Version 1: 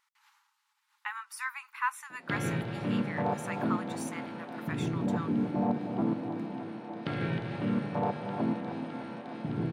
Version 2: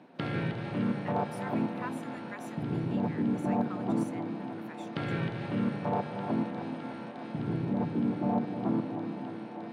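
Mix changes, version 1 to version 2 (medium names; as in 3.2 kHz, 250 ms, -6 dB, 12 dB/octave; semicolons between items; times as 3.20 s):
speech -10.0 dB; background: entry -2.10 s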